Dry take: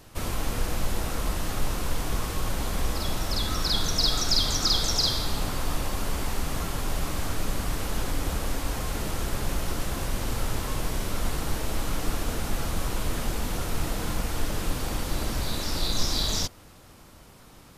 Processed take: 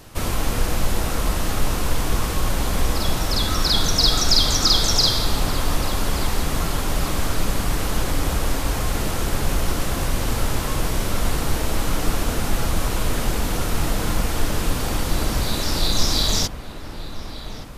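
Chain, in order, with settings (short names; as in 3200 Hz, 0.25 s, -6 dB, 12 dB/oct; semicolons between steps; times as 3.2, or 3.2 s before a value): dark delay 1.172 s, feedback 51%, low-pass 3200 Hz, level -12.5 dB; gain +6.5 dB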